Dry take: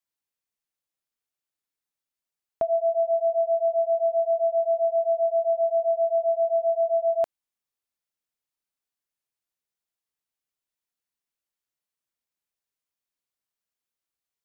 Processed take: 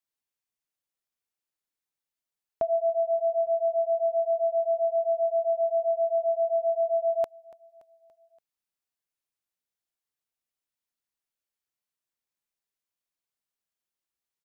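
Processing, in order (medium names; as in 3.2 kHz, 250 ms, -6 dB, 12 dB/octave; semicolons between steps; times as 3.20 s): feedback delay 286 ms, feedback 56%, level -21 dB; trim -2 dB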